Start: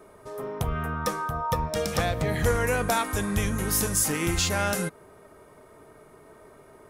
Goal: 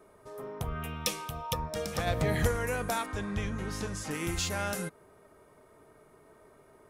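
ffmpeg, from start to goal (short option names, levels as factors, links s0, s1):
-filter_complex "[0:a]asplit=3[s0][s1][s2];[s0]afade=t=out:st=0.82:d=0.02[s3];[s1]highshelf=f=2000:t=q:w=3:g=9.5,afade=t=in:st=0.82:d=0.02,afade=t=out:st=1.52:d=0.02[s4];[s2]afade=t=in:st=1.52:d=0.02[s5];[s3][s4][s5]amix=inputs=3:normalize=0,asplit=3[s6][s7][s8];[s6]afade=t=out:st=2.06:d=0.02[s9];[s7]acontrast=33,afade=t=in:st=2.06:d=0.02,afade=t=out:st=2.46:d=0.02[s10];[s8]afade=t=in:st=2.46:d=0.02[s11];[s9][s10][s11]amix=inputs=3:normalize=0,asettb=1/sr,asplit=3[s12][s13][s14];[s12]atrim=end=3.064[s15];[s13]atrim=start=3.06:end=4.11,asetpts=PTS-STARTPTS,afade=t=in:d=0.004:c=qsin,afade=t=out:st=1.046:d=0.004:c=qsin,lowpass=4600[s16];[s14]atrim=start=4.106[s17];[s15][s16]acrossfade=d=0.004:c1=hsin:c2=qsin[s18];[s18][s17]acrossfade=d=0.004:c1=qsin:c2=hsin,volume=0.447"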